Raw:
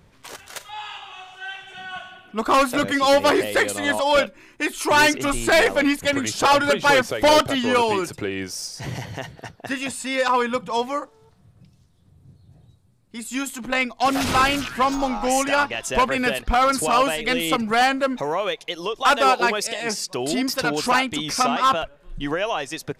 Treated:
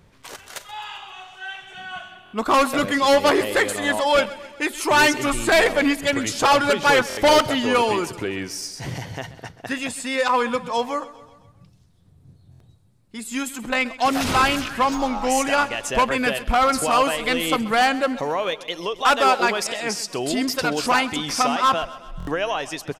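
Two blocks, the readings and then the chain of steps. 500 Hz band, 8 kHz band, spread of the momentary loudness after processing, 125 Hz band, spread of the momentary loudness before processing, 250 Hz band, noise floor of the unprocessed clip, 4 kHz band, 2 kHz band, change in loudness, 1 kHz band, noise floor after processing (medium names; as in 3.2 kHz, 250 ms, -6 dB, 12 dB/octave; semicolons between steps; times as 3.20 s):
0.0 dB, 0.0 dB, 18 LU, 0.0 dB, 17 LU, 0.0 dB, -55 dBFS, 0.0 dB, 0.0 dB, 0.0 dB, 0.0 dB, -53 dBFS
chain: feedback delay 131 ms, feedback 55%, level -17.5 dB; buffer glitch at 2.24/7.08/12.51/22.18 s, samples 1024, times 3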